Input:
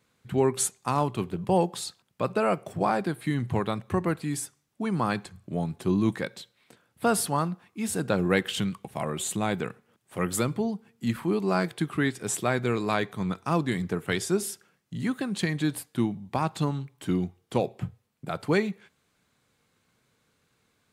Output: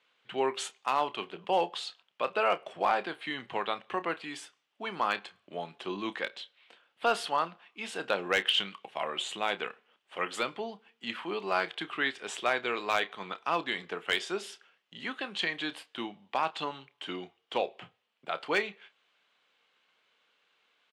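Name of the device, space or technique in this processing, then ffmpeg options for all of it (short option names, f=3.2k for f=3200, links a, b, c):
megaphone: -filter_complex "[0:a]highpass=590,lowpass=3.8k,equalizer=f=3k:t=o:w=0.53:g=10,asoftclip=type=hard:threshold=-17dB,asplit=2[a][b];[b]adelay=30,volume=-13.5dB[c];[a][c]amix=inputs=2:normalize=0"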